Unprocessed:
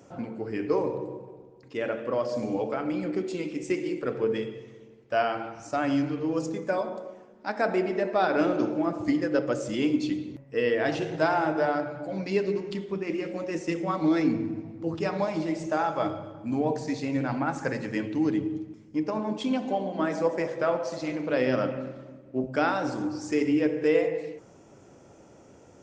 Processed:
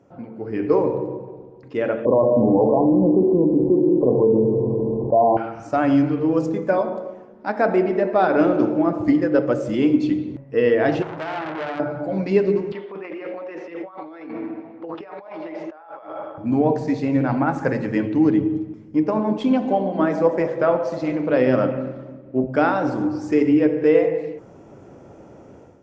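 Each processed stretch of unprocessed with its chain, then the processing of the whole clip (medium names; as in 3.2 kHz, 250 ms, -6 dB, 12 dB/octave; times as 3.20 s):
2.05–5.37 s: brick-wall FIR low-pass 1.1 kHz + level flattener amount 70%
11.02–11.80 s: compression 3:1, threshold -28 dBFS + transformer saturation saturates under 2.7 kHz
12.72–16.38 s: high-pass 650 Hz + compressor with a negative ratio -42 dBFS + distance through air 270 m
whole clip: low-pass 1.3 kHz 6 dB/octave; level rider gain up to 11.5 dB; trim -2 dB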